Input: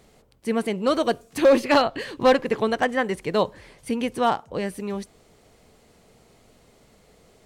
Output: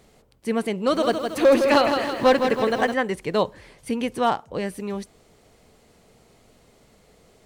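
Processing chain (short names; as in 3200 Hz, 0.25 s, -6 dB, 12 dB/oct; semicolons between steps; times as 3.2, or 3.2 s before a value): 0.76–2.94 lo-fi delay 0.162 s, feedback 55%, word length 8-bit, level -6 dB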